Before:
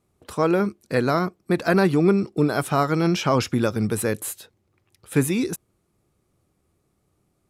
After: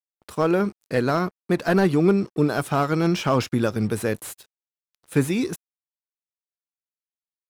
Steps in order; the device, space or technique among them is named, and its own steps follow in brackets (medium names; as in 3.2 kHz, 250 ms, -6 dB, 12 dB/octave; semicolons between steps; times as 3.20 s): early transistor amplifier (crossover distortion -46 dBFS; slew-rate limiter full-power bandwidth 180 Hz)